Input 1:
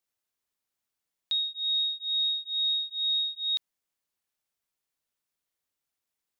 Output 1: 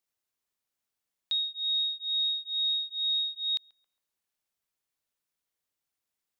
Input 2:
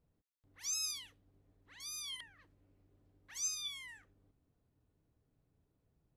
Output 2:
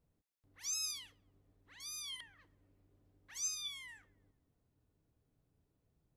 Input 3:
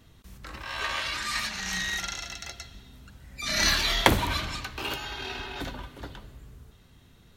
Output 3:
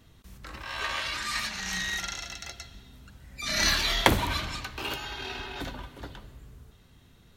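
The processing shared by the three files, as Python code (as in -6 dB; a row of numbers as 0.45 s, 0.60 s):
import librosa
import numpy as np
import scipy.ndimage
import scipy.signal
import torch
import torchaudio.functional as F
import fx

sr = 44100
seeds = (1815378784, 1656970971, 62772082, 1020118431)

p1 = x + fx.echo_banded(x, sr, ms=136, feedback_pct=56, hz=870.0, wet_db=-21.5, dry=0)
y = p1 * librosa.db_to_amplitude(-1.0)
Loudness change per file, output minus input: -1.0 LU, -1.0 LU, -1.0 LU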